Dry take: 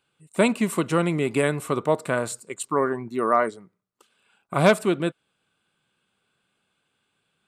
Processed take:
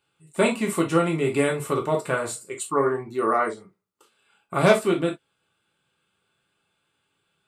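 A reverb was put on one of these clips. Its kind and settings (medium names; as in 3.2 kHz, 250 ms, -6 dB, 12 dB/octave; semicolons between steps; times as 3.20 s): gated-style reverb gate 90 ms falling, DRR -1 dB; trim -3 dB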